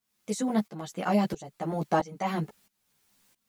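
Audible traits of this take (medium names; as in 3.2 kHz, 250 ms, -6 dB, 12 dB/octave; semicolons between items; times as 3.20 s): a quantiser's noise floor 12-bit, dither triangular; tremolo saw up 1.5 Hz, depth 90%; a shimmering, thickened sound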